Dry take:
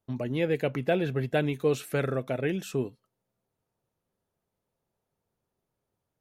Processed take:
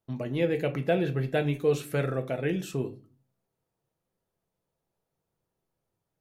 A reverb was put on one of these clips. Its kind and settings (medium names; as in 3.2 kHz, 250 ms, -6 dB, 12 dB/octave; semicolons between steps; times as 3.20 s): simulated room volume 160 m³, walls furnished, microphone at 0.66 m; trim -1.5 dB